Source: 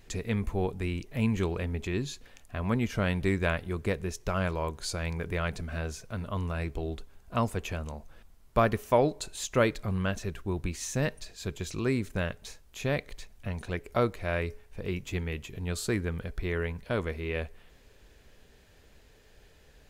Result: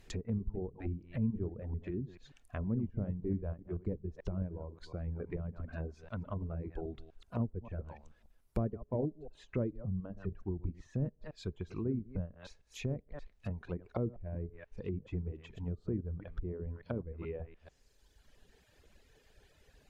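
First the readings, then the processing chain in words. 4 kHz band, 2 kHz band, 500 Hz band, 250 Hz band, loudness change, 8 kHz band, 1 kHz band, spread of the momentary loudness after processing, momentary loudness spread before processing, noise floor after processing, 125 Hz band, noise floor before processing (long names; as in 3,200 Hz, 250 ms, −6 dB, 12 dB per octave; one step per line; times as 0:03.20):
−17.5 dB, −20.0 dB, −10.5 dB, −6.0 dB, −8.0 dB, below −20 dB, −17.5 dB, 9 LU, 11 LU, −68 dBFS, −5.5 dB, −58 dBFS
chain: delay that plays each chunk backwards 145 ms, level −8 dB
reverb reduction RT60 1.6 s
treble cut that deepens with the level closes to 320 Hz, closed at −29 dBFS
level −3.5 dB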